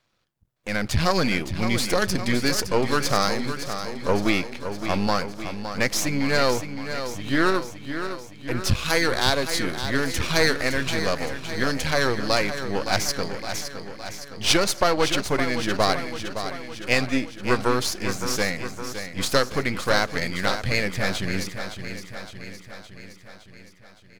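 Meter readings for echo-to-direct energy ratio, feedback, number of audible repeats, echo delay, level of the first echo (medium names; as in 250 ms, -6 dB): -7.5 dB, 60%, 6, 564 ms, -9.5 dB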